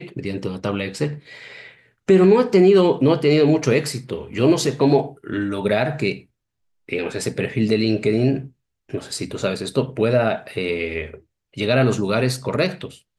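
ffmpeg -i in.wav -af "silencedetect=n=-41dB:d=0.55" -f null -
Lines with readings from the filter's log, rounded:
silence_start: 6.22
silence_end: 6.89 | silence_duration: 0.67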